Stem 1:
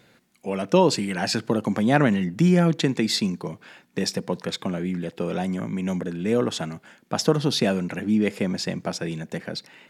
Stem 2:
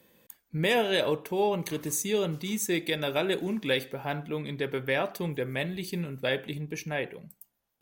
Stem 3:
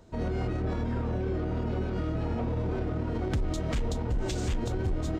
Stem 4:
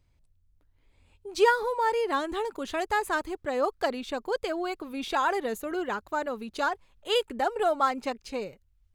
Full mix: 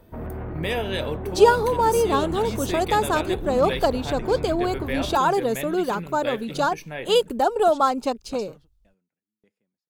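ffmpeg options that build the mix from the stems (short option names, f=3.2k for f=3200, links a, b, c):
-filter_complex "[0:a]aeval=exprs='val(0)*pow(10,-38*if(lt(mod(1.7*n/s,1),2*abs(1.7)/1000),1-mod(1.7*n/s,1)/(2*abs(1.7)/1000),(mod(1.7*n/s,1)-2*abs(1.7)/1000)/(1-2*abs(1.7)/1000))/20)':c=same,adelay=1200,volume=-10.5dB[a];[1:a]bandreject=f=6.9k:w=6,volume=-2dB[b];[2:a]lowpass=f=1.8k:w=0.5412,lowpass=f=1.8k:w=1.3066,aeval=exprs='0.0891*sin(PI/2*2*val(0)/0.0891)':c=same,volume=-8dB[c];[3:a]equalizer=f=2k:w=1.7:g=-13,dynaudnorm=f=290:g=5:m=7.5dB,volume=0.5dB,asplit=2[d][e];[e]apad=whole_len=489257[f];[a][f]sidechaingate=range=-29dB:threshold=-50dB:ratio=16:detection=peak[g];[g][b][c][d]amix=inputs=4:normalize=0"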